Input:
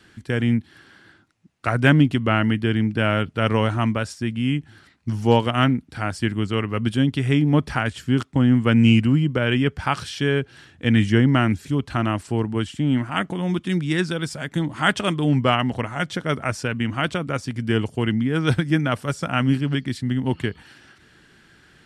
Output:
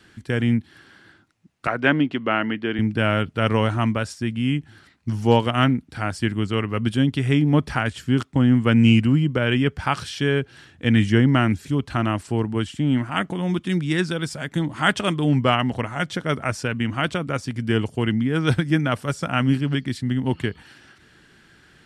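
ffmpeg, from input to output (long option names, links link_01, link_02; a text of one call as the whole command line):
ffmpeg -i in.wav -filter_complex "[0:a]asettb=1/sr,asplit=3[link_01][link_02][link_03];[link_01]atrim=end=1.674[link_04];[link_02]atrim=start=1.67:end=2.79,asetpts=PTS-STARTPTS,afade=type=in:duration=0.004:curve=qsin,afade=type=out:start_time=1.116:duration=0.004:curve=qsin,highpass=270,lowpass=3500[link_05];[link_03]atrim=start=2.786[link_06];[link_04][link_05]acrossfade=duration=0.004:curve1=hsin:curve2=qsin[link_07];[link_07][link_06]acrossfade=duration=0.004:curve1=qsin:curve2=hsin" out.wav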